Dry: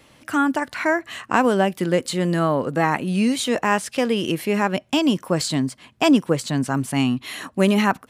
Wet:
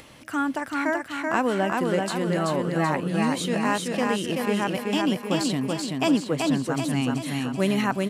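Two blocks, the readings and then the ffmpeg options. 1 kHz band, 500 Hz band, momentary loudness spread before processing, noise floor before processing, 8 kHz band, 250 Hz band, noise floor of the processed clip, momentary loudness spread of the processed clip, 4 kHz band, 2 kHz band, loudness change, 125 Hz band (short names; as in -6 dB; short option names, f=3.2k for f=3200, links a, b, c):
-4.0 dB, -4.0 dB, 5 LU, -57 dBFS, -4.0 dB, -3.5 dB, -42 dBFS, 4 LU, -4.0 dB, -4.0 dB, -4.0 dB, -3.5 dB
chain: -af "acompressor=mode=upward:threshold=-33dB:ratio=2.5,aecho=1:1:382|764|1146|1528|1910|2292|2674:0.708|0.368|0.191|0.0995|0.0518|0.0269|0.014,volume=-6dB"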